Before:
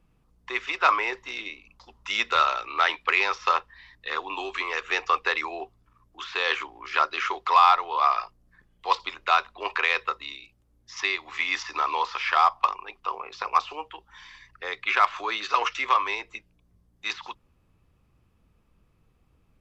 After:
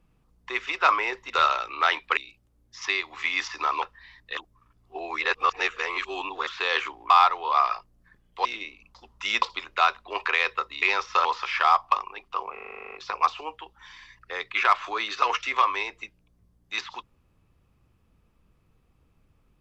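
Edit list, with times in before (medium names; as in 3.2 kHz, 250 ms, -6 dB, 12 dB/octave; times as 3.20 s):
1.30–2.27 s: move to 8.92 s
3.14–3.57 s: swap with 10.32–11.97 s
4.12–6.22 s: reverse
6.85–7.57 s: delete
13.25 s: stutter 0.04 s, 11 plays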